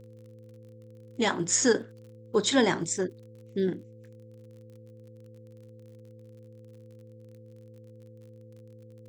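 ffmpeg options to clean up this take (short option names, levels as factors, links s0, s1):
-af "adeclick=t=4,bandreject=f=111:t=h:w=4,bandreject=f=222:t=h:w=4,bandreject=f=333:t=h:w=4,bandreject=f=444:t=h:w=4,bandreject=f=510:w=30"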